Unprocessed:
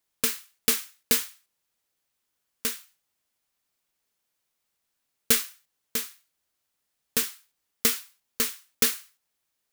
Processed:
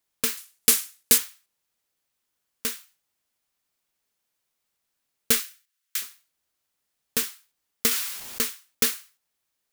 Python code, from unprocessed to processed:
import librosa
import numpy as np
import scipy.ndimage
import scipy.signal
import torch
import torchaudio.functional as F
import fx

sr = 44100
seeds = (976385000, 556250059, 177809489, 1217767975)

y = fx.peak_eq(x, sr, hz=10000.0, db=8.0, octaves=1.7, at=(0.37, 1.18))
y = fx.highpass(y, sr, hz=1300.0, slope=24, at=(5.4, 6.02))
y = fx.env_flatten(y, sr, amount_pct=70, at=(7.91, 8.41))